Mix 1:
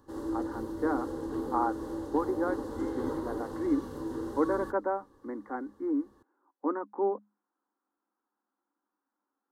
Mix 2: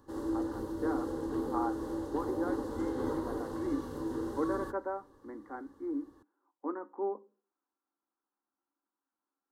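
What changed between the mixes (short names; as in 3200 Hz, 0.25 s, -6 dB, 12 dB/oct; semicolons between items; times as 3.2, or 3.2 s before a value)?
speech -8.0 dB; reverb: on, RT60 0.40 s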